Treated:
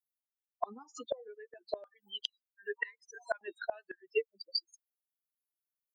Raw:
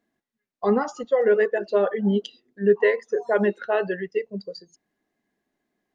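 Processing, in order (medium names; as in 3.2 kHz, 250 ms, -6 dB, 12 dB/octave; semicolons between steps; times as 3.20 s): expander on every frequency bin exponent 3; high-pass 190 Hz 24 dB/octave, from 1.84 s 1 kHz, from 3.41 s 490 Hz; compression 6:1, threshold -27 dBFS, peak gain reduction 9 dB; inverted gate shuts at -30 dBFS, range -30 dB; trim +11 dB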